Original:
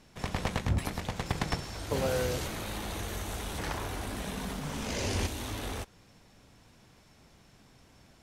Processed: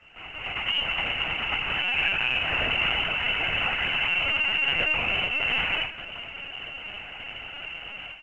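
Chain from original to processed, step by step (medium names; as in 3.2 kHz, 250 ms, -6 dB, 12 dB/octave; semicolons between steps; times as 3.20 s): 1.67–2.22 s: comb 3.1 ms, depth 98%; 4.41–5.12 s: high-pass 45 Hz -> 160 Hz 6 dB/octave; compression 10:1, threshold -40 dBFS, peak gain reduction 17 dB; peak limiter -37.5 dBFS, peak gain reduction 9.5 dB; level rider gain up to 15.5 dB; delay 84 ms -18 dB; reverberation RT60 0.35 s, pre-delay 3 ms, DRR -5.5 dB; frequency inversion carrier 3 kHz; LPC vocoder at 8 kHz pitch kept; µ-law 128 kbps 16 kHz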